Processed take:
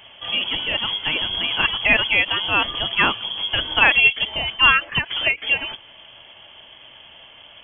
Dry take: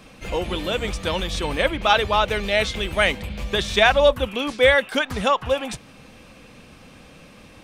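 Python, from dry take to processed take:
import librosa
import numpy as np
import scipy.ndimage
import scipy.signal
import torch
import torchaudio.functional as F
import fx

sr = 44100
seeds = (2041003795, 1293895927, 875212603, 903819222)

y = fx.freq_invert(x, sr, carrier_hz=3300)
y = fx.end_taper(y, sr, db_per_s=350.0)
y = y * librosa.db_to_amplitude(1.0)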